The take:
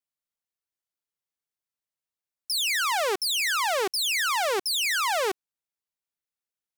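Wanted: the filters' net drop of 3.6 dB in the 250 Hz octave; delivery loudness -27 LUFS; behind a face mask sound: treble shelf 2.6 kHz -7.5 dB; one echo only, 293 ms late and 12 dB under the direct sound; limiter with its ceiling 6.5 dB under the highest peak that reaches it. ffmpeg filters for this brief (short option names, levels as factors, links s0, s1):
-af "equalizer=f=250:t=o:g=-7.5,alimiter=level_in=1.06:limit=0.0631:level=0:latency=1,volume=0.944,highshelf=f=2600:g=-7.5,aecho=1:1:293:0.251,volume=1.78"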